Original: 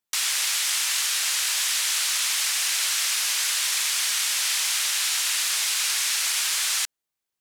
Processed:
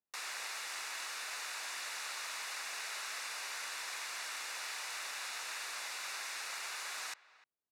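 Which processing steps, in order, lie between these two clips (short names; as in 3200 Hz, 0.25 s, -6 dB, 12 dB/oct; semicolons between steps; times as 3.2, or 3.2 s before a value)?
high shelf 2100 Hz -11 dB; notch 3300 Hz, Q 6.2; speakerphone echo 0.29 s, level -19 dB; speed mistake 25 fps video run at 24 fps; HPF 340 Hz 6 dB/oct; tilt -2 dB/oct; gain -5 dB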